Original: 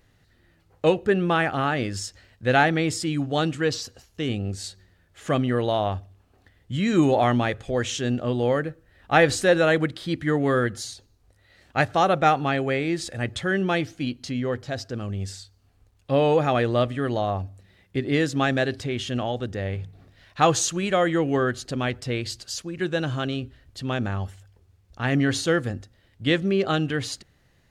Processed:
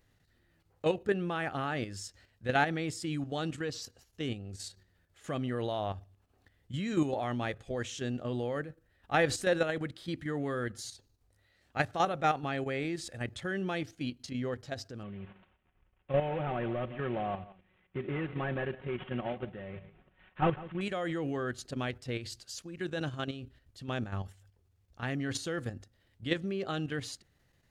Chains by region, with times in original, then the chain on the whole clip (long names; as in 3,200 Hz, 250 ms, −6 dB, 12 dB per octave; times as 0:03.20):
0:15.03–0:20.81: variable-slope delta modulation 16 kbit/s + comb filter 5.4 ms, depth 55% + single-tap delay 160 ms −16 dB
whole clip: high-shelf EQ 9,300 Hz +4 dB; output level in coarse steps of 9 dB; level −6.5 dB